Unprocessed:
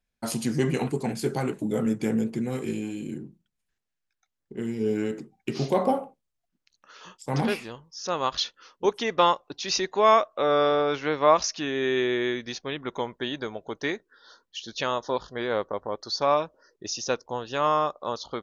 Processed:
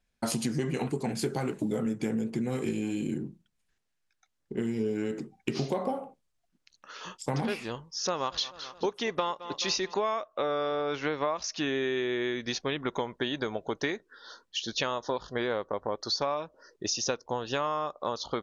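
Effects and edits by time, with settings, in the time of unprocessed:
1.14–1.79 s: block-companded coder 7-bit
7.86–9.94 s: feedback delay 215 ms, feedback 49%, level -20 dB
whole clip: low-pass 11 kHz; compression 10:1, threshold -31 dBFS; trim +4.5 dB

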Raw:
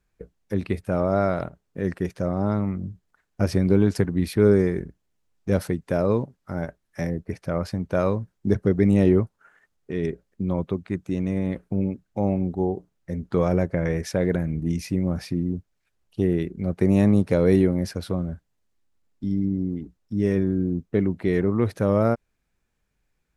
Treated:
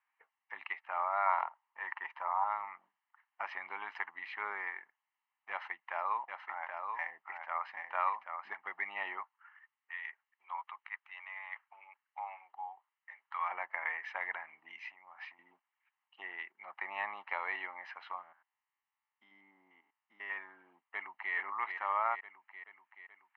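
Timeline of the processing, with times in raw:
1.26–2.44 s: peaking EQ 950 Hz +9.5 dB 0.47 oct
5.50–8.64 s: delay 781 ms -5.5 dB
9.24–13.51 s: high-pass 990 Hz
14.80–15.39 s: compression 4:1, threshold -32 dBFS
18.23–20.30 s: spectrogram pixelated in time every 100 ms
20.80–21.34 s: echo throw 430 ms, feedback 65%, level -5.5 dB
whole clip: elliptic band-pass 850–2700 Hz, stop band 80 dB; comb 1 ms, depth 57%

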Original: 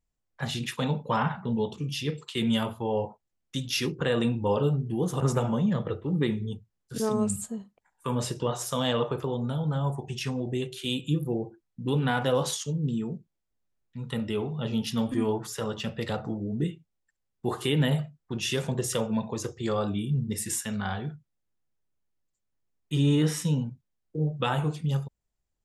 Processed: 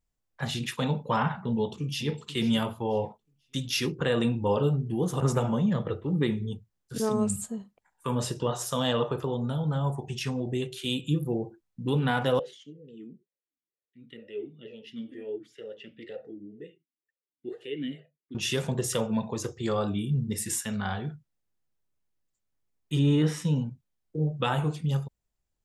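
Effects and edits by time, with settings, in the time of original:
1.51–2.14 s: echo throw 490 ms, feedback 25%, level -14.5 dB
8.15–9.59 s: band-stop 2.2 kHz, Q 11
12.39–18.35 s: talking filter e-i 2.1 Hz
22.99–23.56 s: low-pass 3.7 kHz 6 dB/octave

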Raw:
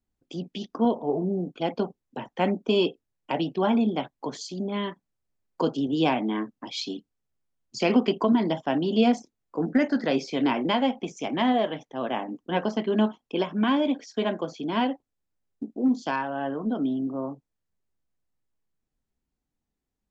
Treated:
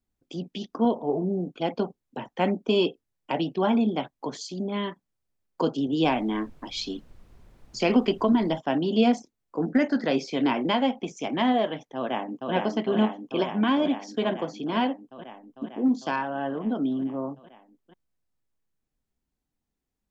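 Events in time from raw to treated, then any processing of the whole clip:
6.03–8.58 s: added noise brown -50 dBFS
11.96–12.53 s: echo throw 450 ms, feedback 80%, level -3 dB

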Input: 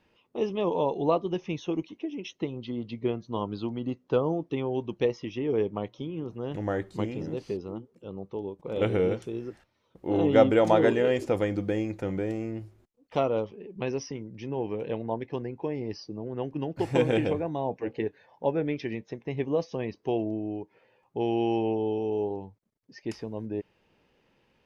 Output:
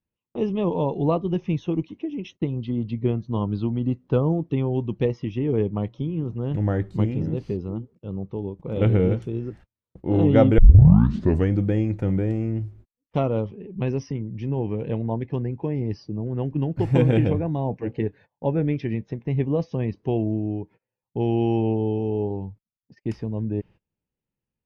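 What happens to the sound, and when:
10.58 s: tape start 0.94 s
whole clip: tone controls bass +14 dB, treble -7 dB; gate -45 dBFS, range -27 dB

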